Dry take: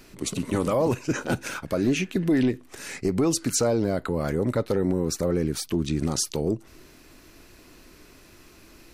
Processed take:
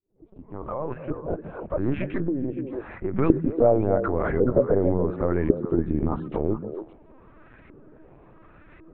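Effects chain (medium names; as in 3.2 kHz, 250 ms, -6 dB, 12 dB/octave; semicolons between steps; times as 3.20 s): fade-in on the opening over 2.46 s; LFO low-pass saw up 0.91 Hz 420–2000 Hz; LPC vocoder at 8 kHz pitch kept; on a send: repeats whose band climbs or falls 142 ms, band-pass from 170 Hz, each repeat 1.4 oct, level -4 dB; 2.27–3.13 s: on the sum: compression 6:1, threshold -24 dBFS, peak gain reduction 9.5 dB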